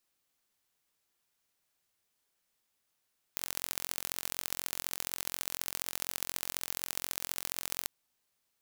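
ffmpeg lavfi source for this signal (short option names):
-f lavfi -i "aevalsrc='0.531*eq(mod(n,1000),0)*(0.5+0.5*eq(mod(n,3000),0))':d=4.5:s=44100"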